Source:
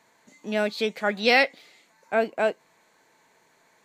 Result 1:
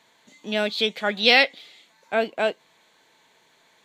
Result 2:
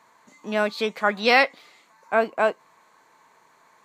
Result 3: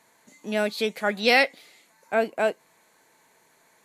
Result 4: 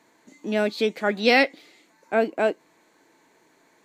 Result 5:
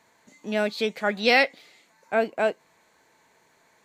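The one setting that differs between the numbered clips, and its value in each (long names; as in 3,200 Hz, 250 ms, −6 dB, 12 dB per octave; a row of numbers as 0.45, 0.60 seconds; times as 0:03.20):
parametric band, centre frequency: 3,400, 1,100, 11,000, 310, 72 Hertz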